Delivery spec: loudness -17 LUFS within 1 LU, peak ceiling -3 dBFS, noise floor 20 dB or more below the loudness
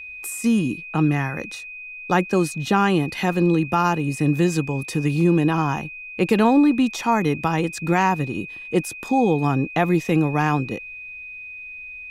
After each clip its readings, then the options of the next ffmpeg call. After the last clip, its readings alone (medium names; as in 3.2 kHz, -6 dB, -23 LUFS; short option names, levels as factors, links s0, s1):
steady tone 2.5 kHz; tone level -34 dBFS; loudness -21.0 LUFS; peak level -4.5 dBFS; loudness target -17.0 LUFS
-> -af "bandreject=f=2500:w=30"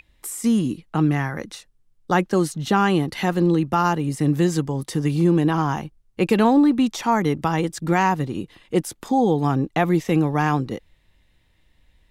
steady tone not found; loudness -21.0 LUFS; peak level -4.5 dBFS; loudness target -17.0 LUFS
-> -af "volume=1.58,alimiter=limit=0.708:level=0:latency=1"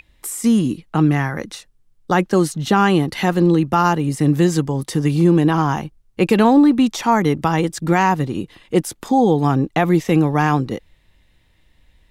loudness -17.5 LUFS; peak level -3.0 dBFS; noise floor -58 dBFS